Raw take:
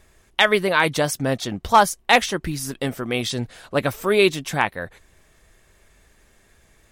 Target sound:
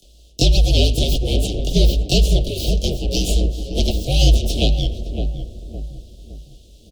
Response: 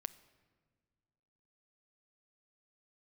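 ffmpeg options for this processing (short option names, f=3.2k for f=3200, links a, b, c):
-filter_complex "[0:a]tiltshelf=f=680:g=-5.5,aeval=exprs='abs(val(0))':c=same,acrossover=split=100|350|1100[a][b][c][d];[a]acompressor=threshold=-21dB:ratio=4[e];[b]acompressor=threshold=-32dB:ratio=4[f];[c]acompressor=threshold=-31dB:ratio=4[g];[d]acompressor=threshold=-23dB:ratio=4[h];[e][f][g][h]amix=inputs=4:normalize=0,afreqshift=-56,flanger=delay=1.3:depth=8.7:regen=-77:speed=1.7:shape=triangular,aeval=exprs='0.355*sin(PI/2*1.58*val(0)/0.355)':c=same,acompressor=mode=upward:threshold=-51dB:ratio=2.5,asuperstop=centerf=1400:order=12:qfactor=0.62,asplit=2[i][j];[j]adelay=561,lowpass=f=810:p=1,volume=-5.5dB,asplit=2[k][l];[l]adelay=561,lowpass=f=810:p=1,volume=0.43,asplit=2[m][n];[n]adelay=561,lowpass=f=810:p=1,volume=0.43,asplit=2[o][p];[p]adelay=561,lowpass=f=810:p=1,volume=0.43,asplit=2[q][r];[r]adelay=561,lowpass=f=810:p=1,volume=0.43[s];[i][k][m][o][q][s]amix=inputs=6:normalize=0,asplit=2[t][u];[1:a]atrim=start_sample=2205,lowpass=4.8k,adelay=22[v];[u][v]afir=irnorm=-1:irlink=0,volume=15.5dB[w];[t][w]amix=inputs=2:normalize=0,volume=-6.5dB"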